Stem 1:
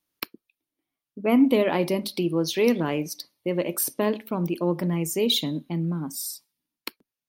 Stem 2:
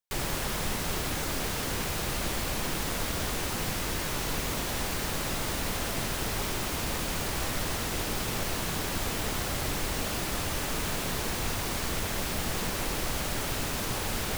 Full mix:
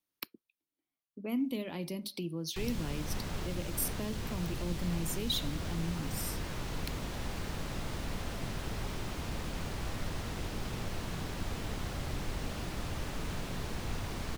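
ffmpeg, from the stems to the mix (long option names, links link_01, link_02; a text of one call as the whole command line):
ffmpeg -i stem1.wav -i stem2.wav -filter_complex "[0:a]volume=-8dB[link_01];[1:a]lowpass=frequency=1900:poles=1,adelay=2450,volume=-2.5dB[link_02];[link_01][link_02]amix=inputs=2:normalize=0,acrossover=split=230|3000[link_03][link_04][link_05];[link_04]acompressor=threshold=-43dB:ratio=4[link_06];[link_03][link_06][link_05]amix=inputs=3:normalize=0" out.wav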